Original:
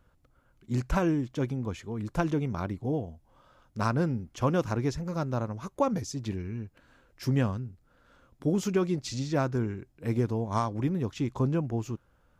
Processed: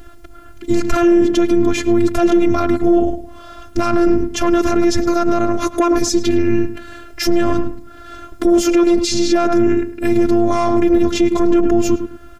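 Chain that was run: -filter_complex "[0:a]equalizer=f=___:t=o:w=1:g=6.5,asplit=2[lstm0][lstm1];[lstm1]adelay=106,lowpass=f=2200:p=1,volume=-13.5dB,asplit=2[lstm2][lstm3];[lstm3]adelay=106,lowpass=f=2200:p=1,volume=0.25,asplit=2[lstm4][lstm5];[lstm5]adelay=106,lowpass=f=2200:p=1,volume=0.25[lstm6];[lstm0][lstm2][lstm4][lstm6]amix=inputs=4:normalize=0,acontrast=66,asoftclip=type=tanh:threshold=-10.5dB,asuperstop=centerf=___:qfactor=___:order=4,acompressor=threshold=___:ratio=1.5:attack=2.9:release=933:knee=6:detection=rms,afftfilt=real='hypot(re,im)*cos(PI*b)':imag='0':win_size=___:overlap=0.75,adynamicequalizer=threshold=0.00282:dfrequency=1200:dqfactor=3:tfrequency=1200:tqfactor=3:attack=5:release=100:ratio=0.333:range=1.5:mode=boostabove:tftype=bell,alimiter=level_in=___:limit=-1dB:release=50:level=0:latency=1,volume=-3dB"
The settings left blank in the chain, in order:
170, 970, 4.7, -25dB, 512, 26dB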